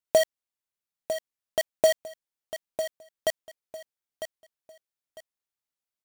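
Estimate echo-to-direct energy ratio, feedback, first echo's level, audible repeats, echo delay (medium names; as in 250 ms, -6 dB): -9.5 dB, 27%, -10.0 dB, 3, 951 ms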